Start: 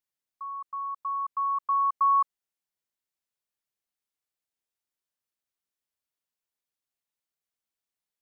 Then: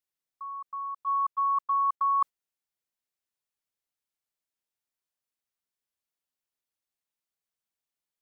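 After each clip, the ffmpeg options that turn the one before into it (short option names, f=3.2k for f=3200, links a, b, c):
-af "agate=range=-10dB:threshold=-31dB:ratio=16:detection=peak,areverse,acompressor=threshold=-33dB:ratio=6,areverse,volume=8.5dB"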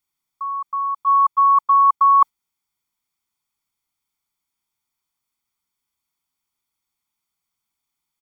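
-af "equalizer=f=880:w=7.5:g=3.5,aecho=1:1:0.9:0.65,volume=7.5dB"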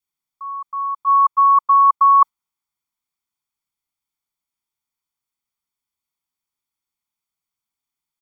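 -af "adynamicequalizer=threshold=0.0447:dfrequency=1100:dqfactor=2.4:tfrequency=1100:tqfactor=2.4:attack=5:release=100:ratio=0.375:range=3.5:mode=boostabove:tftype=bell,volume=-5.5dB"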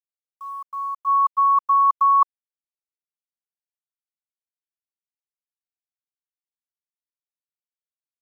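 -af "acrusher=bits=8:mix=0:aa=0.000001,volume=-4.5dB"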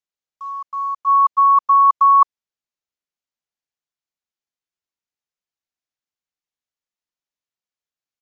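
-af "aresample=16000,aresample=44100,volume=4.5dB"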